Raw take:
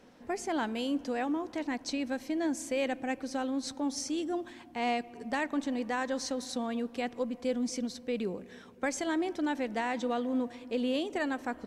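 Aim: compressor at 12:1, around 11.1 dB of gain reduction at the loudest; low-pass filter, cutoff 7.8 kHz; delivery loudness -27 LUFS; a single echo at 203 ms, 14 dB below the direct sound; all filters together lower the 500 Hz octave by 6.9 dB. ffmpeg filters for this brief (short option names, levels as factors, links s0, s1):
-af "lowpass=7800,equalizer=f=500:t=o:g=-8.5,acompressor=threshold=0.00891:ratio=12,aecho=1:1:203:0.2,volume=7.94"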